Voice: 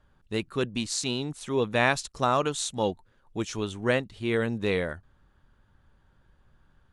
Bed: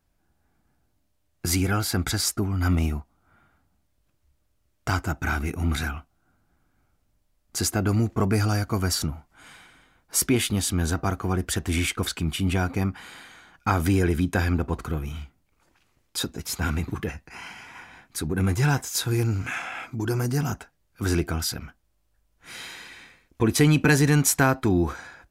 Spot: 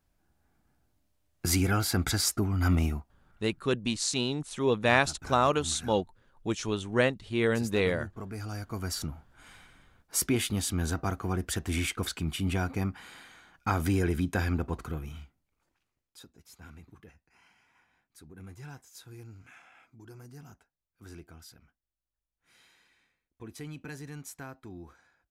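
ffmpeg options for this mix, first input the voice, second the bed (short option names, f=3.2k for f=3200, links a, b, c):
-filter_complex "[0:a]adelay=3100,volume=0dB[a];[1:a]volume=9.5dB,afade=t=out:st=2.75:d=0.9:silence=0.177828,afade=t=in:st=8.32:d=1.09:silence=0.251189,afade=t=out:st=14.63:d=1.55:silence=0.125893[b];[a][b]amix=inputs=2:normalize=0"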